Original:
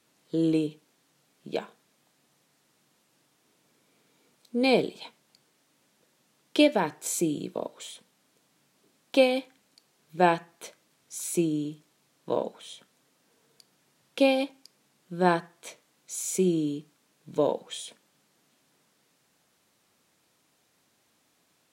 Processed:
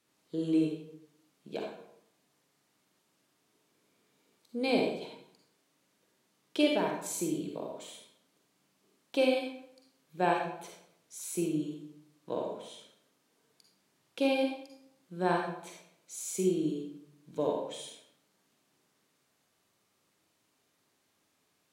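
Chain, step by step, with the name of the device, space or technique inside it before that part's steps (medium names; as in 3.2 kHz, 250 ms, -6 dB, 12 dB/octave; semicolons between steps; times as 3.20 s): bathroom (reverberation RT60 0.75 s, pre-delay 41 ms, DRR 0 dB); trim -8 dB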